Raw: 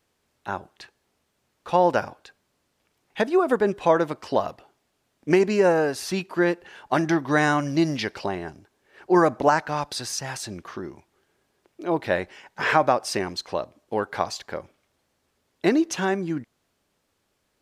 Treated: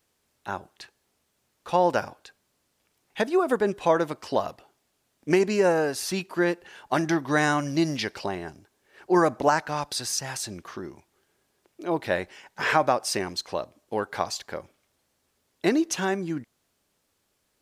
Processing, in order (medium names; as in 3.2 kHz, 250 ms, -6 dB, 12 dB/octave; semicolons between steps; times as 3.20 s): treble shelf 5.2 kHz +7.5 dB; trim -2.5 dB